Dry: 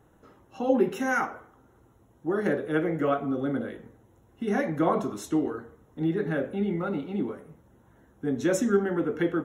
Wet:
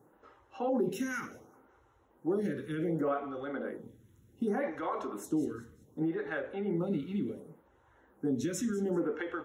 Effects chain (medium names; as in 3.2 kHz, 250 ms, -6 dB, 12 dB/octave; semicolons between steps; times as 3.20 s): high-pass 52 Hz; band-stop 670 Hz, Q 12; peak limiter -22 dBFS, peak gain reduction 11.5 dB; on a send: feedback echo behind a high-pass 193 ms, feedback 36%, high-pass 3.3 kHz, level -16 dB; on the sum: lamp-driven phase shifter 0.67 Hz